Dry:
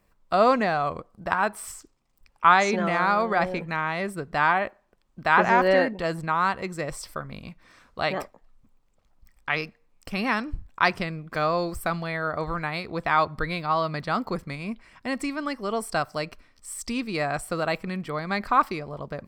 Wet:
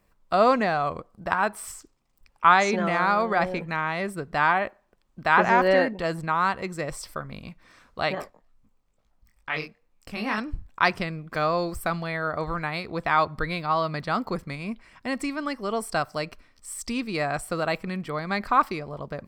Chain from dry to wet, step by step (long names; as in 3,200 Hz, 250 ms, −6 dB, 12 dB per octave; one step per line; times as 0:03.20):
0:08.15–0:10.38: chorus effect 2.2 Hz, delay 17.5 ms, depth 6.7 ms